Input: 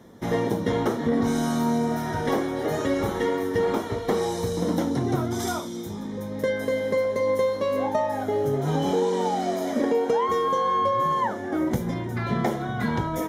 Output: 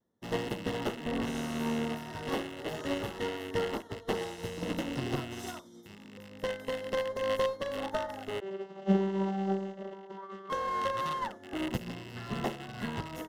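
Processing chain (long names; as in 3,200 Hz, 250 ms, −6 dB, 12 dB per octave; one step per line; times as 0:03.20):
loose part that buzzes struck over −34 dBFS, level −16 dBFS
asymmetric clip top −27.5 dBFS
pitch vibrato 0.43 Hz 21 cents
0:08.40–0:10.50: channel vocoder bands 32, saw 194 Hz
Butterworth band-reject 2,400 Hz, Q 4.3
expander for the loud parts 2.5 to 1, over −41 dBFS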